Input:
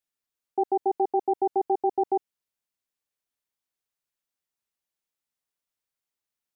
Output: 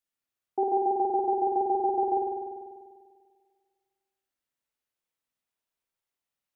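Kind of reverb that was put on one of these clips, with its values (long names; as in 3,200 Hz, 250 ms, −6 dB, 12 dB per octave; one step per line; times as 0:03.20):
spring reverb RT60 1.8 s, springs 49 ms, chirp 50 ms, DRR −1.5 dB
level −2.5 dB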